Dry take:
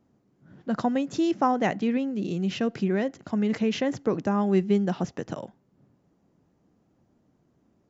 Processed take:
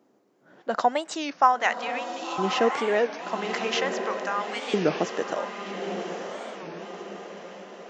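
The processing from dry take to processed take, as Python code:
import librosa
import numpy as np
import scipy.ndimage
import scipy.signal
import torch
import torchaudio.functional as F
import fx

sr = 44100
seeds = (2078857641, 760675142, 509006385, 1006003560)

y = fx.filter_lfo_highpass(x, sr, shape='saw_up', hz=0.42, low_hz=360.0, high_hz=1800.0, q=1.2)
y = fx.echo_diffused(y, sr, ms=1110, feedback_pct=51, wet_db=-6.5)
y = fx.record_warp(y, sr, rpm=33.33, depth_cents=250.0)
y = y * 10.0 ** (5.5 / 20.0)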